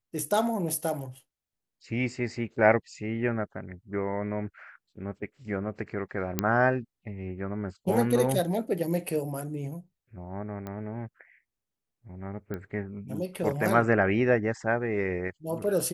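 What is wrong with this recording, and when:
0:06.39: click −9 dBFS
0:10.67: click −24 dBFS
0:12.54: click −23 dBFS

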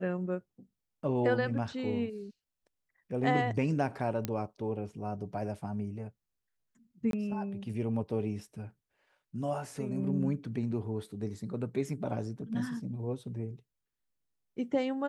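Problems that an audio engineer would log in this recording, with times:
0:04.25: click −17 dBFS
0:07.11–0:07.13: drop-out 22 ms

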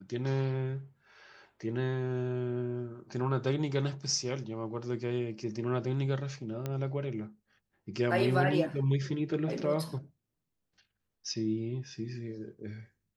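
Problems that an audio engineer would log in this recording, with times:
0:06.66: click −21 dBFS

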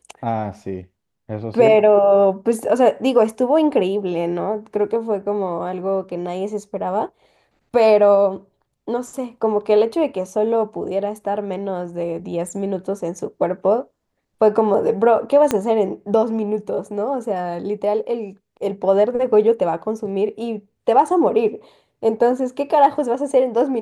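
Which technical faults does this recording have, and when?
0:15.51: click −5 dBFS

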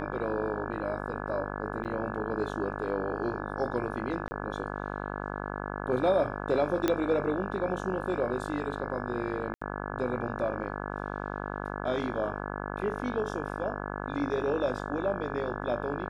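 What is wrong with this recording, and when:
mains buzz 50 Hz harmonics 34 −36 dBFS
0:01.84–0:01.85: drop-out 9 ms
0:04.28–0:04.31: drop-out 30 ms
0:06.88: click −12 dBFS
0:09.54–0:09.62: drop-out 75 ms

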